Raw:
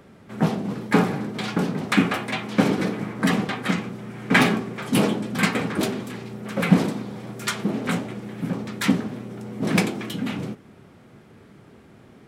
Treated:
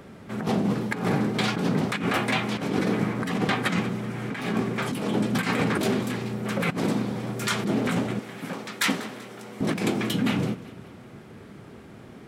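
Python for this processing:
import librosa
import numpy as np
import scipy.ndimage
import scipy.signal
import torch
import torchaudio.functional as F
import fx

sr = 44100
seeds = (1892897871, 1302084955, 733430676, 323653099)

y = fx.highpass(x, sr, hz=940.0, slope=6, at=(8.19, 9.61))
y = fx.over_compress(y, sr, threshold_db=-26.0, ratio=-1.0)
y = fx.echo_feedback(y, sr, ms=192, feedback_pct=48, wet_db=-18.0)
y = y * 10.0 ** (1.0 / 20.0)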